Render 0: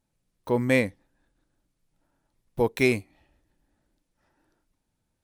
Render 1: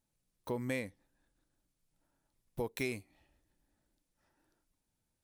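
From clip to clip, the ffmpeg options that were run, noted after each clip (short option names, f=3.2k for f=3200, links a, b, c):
-af "highshelf=f=4.5k:g=7,acompressor=threshold=-28dB:ratio=3,volume=-7dB"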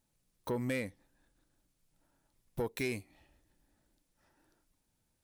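-filter_complex "[0:a]asplit=2[a][b];[b]alimiter=level_in=4.5dB:limit=-24dB:level=0:latency=1:release=279,volume=-4.5dB,volume=-3dB[c];[a][c]amix=inputs=2:normalize=0,asoftclip=type=tanh:threshold=-25.5dB"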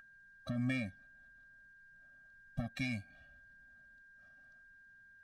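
-af "lowpass=5.5k,aeval=exprs='val(0)+0.00501*sin(2*PI*1600*n/s)':c=same,afftfilt=real='re*eq(mod(floor(b*sr/1024/270),2),0)':imag='im*eq(mod(floor(b*sr/1024/270),2),0)':win_size=1024:overlap=0.75,volume=2dB"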